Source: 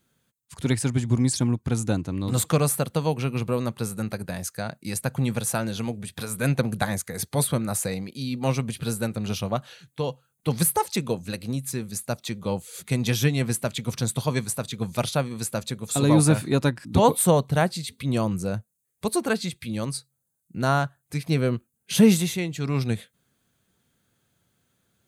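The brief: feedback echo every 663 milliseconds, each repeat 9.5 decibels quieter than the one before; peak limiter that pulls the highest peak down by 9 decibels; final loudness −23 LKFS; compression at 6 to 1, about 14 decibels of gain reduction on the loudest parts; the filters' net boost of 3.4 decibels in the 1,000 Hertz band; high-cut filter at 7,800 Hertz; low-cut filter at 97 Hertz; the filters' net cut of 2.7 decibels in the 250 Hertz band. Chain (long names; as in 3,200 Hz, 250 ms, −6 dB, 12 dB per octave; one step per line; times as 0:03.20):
high-pass filter 97 Hz
low-pass filter 7,800 Hz
parametric band 250 Hz −3.5 dB
parametric band 1,000 Hz +4.5 dB
downward compressor 6 to 1, threshold −27 dBFS
brickwall limiter −21.5 dBFS
repeating echo 663 ms, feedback 33%, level −9.5 dB
level +11.5 dB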